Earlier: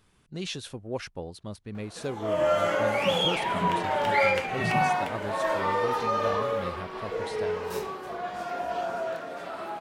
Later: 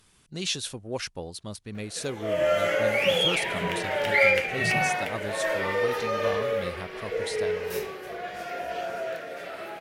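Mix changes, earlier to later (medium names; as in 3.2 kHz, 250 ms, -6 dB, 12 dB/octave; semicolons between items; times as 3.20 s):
background: add graphic EQ 250/500/1000/2000/4000/8000 Hz -6/+6/-12/+6/-5/-9 dB; master: add peaking EQ 9.3 kHz +10.5 dB 2.9 oct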